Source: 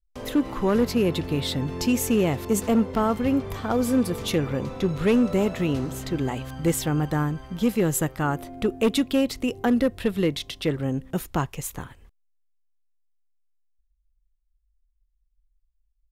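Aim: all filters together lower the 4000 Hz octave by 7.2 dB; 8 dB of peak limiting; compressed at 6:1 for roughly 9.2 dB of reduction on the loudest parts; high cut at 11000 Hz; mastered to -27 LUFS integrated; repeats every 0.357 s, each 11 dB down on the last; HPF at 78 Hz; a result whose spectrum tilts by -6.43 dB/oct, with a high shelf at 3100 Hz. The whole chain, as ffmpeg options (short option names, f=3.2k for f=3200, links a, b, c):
-af "highpass=78,lowpass=11k,highshelf=f=3.1k:g=-6.5,equalizer=f=4k:t=o:g=-4.5,acompressor=threshold=-27dB:ratio=6,alimiter=level_in=1.5dB:limit=-24dB:level=0:latency=1,volume=-1.5dB,aecho=1:1:357|714|1071:0.282|0.0789|0.0221,volume=7.5dB"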